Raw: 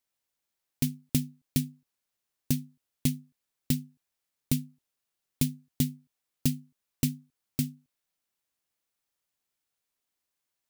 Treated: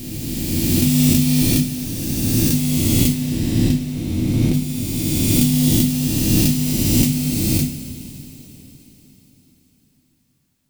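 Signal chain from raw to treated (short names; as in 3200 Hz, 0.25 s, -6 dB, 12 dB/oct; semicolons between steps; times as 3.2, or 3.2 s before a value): spectral swells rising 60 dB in 2.99 s; 3.08–4.53 LPF 2900 Hz -> 1600 Hz 6 dB/oct; two-slope reverb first 0.37 s, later 4.3 s, from -18 dB, DRR 0 dB; gain +4.5 dB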